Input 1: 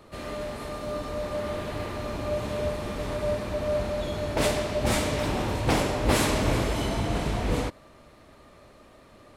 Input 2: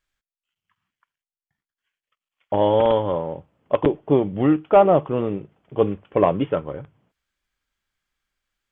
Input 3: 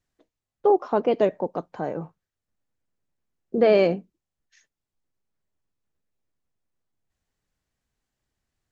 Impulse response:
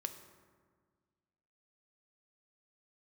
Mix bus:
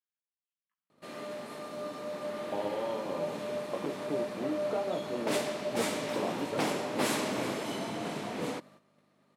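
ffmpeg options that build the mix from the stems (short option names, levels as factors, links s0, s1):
-filter_complex "[0:a]aeval=exprs='val(0)+0.00562*(sin(2*PI*50*n/s)+sin(2*PI*2*50*n/s)/2+sin(2*PI*3*50*n/s)/3+sin(2*PI*4*50*n/s)/4+sin(2*PI*5*50*n/s)/5)':c=same,adelay=900,volume=0.501[s0];[1:a]flanger=delay=17:depth=6.3:speed=1.2,acompressor=threshold=0.0631:ratio=6,volume=0.422[s1];[s0][s1]amix=inputs=2:normalize=0,highpass=f=170:w=0.5412,highpass=f=170:w=1.3066,agate=range=0.282:threshold=0.00178:ratio=16:detection=peak"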